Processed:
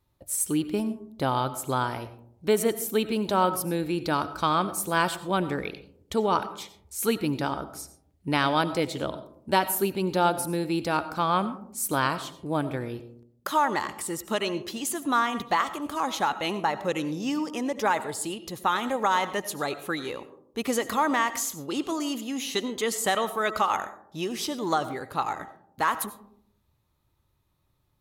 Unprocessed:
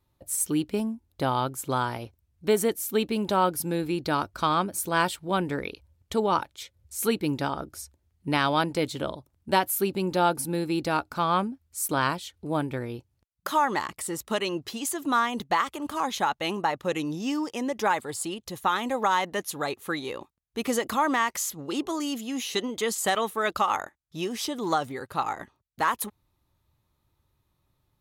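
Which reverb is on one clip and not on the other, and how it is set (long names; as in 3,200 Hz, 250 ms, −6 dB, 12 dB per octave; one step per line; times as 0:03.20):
comb and all-pass reverb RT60 0.69 s, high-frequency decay 0.3×, pre-delay 50 ms, DRR 13 dB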